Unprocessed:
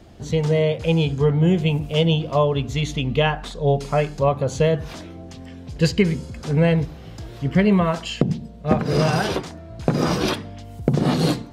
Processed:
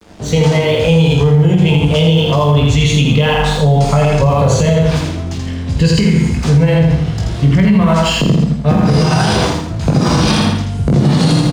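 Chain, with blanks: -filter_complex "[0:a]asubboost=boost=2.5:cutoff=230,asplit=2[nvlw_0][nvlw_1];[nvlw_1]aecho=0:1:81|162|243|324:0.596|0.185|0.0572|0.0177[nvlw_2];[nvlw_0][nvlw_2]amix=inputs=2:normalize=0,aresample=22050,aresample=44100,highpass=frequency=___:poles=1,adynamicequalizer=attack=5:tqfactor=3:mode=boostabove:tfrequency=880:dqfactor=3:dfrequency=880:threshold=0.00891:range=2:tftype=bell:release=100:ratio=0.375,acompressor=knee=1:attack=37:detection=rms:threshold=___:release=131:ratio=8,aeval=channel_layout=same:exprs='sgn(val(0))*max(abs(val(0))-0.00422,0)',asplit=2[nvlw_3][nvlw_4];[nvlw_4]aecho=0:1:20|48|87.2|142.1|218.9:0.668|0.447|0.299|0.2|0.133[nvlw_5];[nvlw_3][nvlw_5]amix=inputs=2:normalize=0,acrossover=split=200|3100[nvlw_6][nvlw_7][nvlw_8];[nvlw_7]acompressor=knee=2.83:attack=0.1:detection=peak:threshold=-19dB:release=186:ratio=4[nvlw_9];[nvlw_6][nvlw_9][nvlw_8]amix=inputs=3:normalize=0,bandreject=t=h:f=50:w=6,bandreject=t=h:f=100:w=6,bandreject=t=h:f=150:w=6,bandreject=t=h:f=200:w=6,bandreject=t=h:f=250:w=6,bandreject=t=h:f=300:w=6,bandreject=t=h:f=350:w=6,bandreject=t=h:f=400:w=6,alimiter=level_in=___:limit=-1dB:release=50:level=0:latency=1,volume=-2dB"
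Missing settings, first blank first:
81, -17dB, 14dB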